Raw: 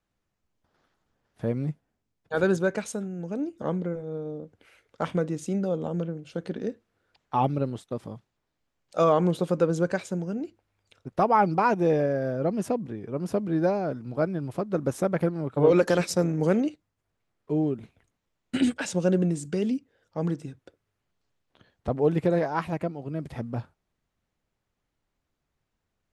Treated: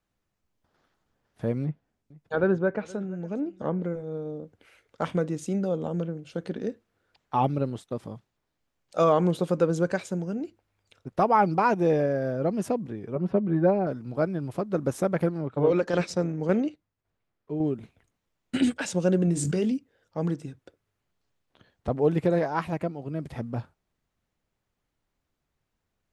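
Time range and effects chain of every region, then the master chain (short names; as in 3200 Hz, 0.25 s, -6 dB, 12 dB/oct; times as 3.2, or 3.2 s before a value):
1.63–3.83 treble ducked by the level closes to 1700 Hz, closed at -24 dBFS + echo 0.471 s -21.5 dB
13.15–13.87 air absorption 400 m + comb 5.3 ms, depth 70%
15.38–17.65 tremolo saw down 1.8 Hz, depth 50% + air absorption 74 m
19.25–19.72 doubler 23 ms -10.5 dB + backwards sustainer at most 24 dB/s
whole clip: dry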